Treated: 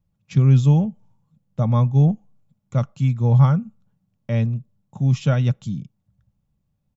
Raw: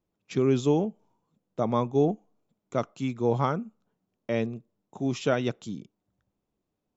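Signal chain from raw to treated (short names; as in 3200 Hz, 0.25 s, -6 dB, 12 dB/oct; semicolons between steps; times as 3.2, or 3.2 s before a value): resonant low shelf 210 Hz +13.5 dB, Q 3; comb 3.6 ms, depth 36%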